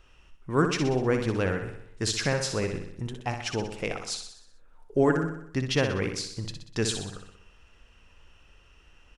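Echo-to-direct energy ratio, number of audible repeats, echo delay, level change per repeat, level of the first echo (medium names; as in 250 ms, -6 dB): -5.5 dB, 6, 62 ms, -5.0 dB, -7.0 dB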